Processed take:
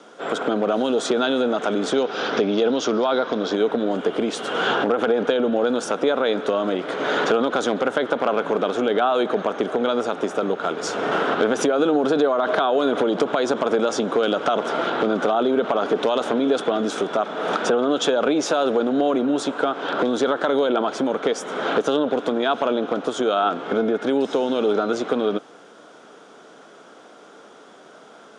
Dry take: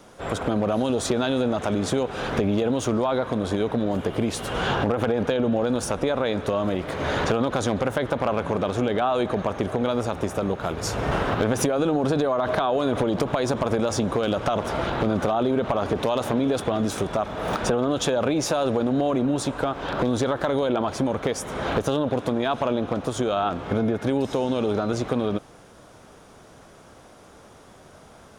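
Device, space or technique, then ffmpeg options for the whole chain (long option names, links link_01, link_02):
television speaker: -filter_complex "[0:a]asettb=1/sr,asplit=3[link_01][link_02][link_03];[link_01]atrim=end=1.924[link_04];[link_02]atrim=start=1.92:end=3.54,asetpts=PTS-STARTPTS,afade=type=in:duration=0.004:curve=qsin,afade=type=out:start_time=1.616:duration=0.004:curve=qsin,highshelf=frequency=7600:width_type=q:width=3:gain=-13.5[link_05];[link_03]atrim=start=3.536[link_06];[link_04][link_05]acrossfade=duration=0.004:curve1=hsin:curve2=qsin[link_07];[link_07][link_06]acrossfade=duration=0.004:curve1=qsin:curve2=hsin,highpass=frequency=200:width=0.5412,highpass=frequency=200:width=1.3066,equalizer=frequency=300:width_type=q:width=4:gain=3,equalizer=frequency=440:width_type=q:width=4:gain=6,equalizer=frequency=710:width_type=q:width=4:gain=3,equalizer=frequency=1400:width_type=q:width=4:gain=8,equalizer=frequency=3300:width_type=q:width=4:gain=6,lowpass=frequency=8300:width=0.5412,lowpass=frequency=8300:width=1.3066"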